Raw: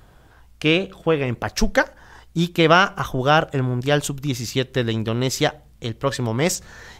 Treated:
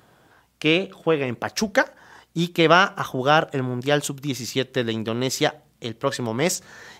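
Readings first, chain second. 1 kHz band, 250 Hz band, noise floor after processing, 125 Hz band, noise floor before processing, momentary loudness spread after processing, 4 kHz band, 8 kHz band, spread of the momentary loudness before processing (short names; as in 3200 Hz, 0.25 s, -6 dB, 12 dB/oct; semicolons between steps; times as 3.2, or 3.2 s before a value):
-1.0 dB, -2.0 dB, -61 dBFS, -5.5 dB, -51 dBFS, 11 LU, -1.0 dB, -1.0 dB, 10 LU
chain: HPF 160 Hz 12 dB/oct; gain -1 dB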